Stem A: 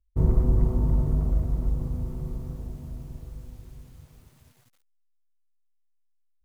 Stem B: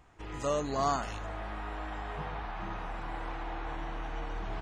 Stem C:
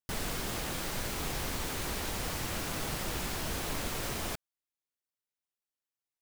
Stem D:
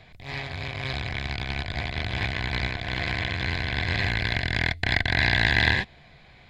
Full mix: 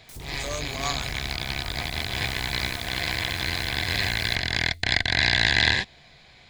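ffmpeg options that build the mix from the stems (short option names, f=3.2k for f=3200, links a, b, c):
-filter_complex "[0:a]volume=-7dB[a];[1:a]acrossover=split=530[b][c];[b]aeval=exprs='val(0)*(1-0.7/2+0.7/2*cos(2*PI*6.3*n/s))':c=same[d];[c]aeval=exprs='val(0)*(1-0.7/2-0.7/2*cos(2*PI*6.3*n/s))':c=same[e];[d][e]amix=inputs=2:normalize=0,volume=-0.5dB[f];[2:a]alimiter=level_in=8dB:limit=-24dB:level=0:latency=1:release=184,volume=-8dB,volume=-9.5dB[g];[3:a]lowpass=8.3k,volume=-1dB[h];[a][g]amix=inputs=2:normalize=0,alimiter=level_in=5.5dB:limit=-24dB:level=0:latency=1:release=154,volume=-5.5dB,volume=0dB[i];[f][h][i]amix=inputs=3:normalize=0,bass=f=250:g=-3,treble=f=4k:g=14"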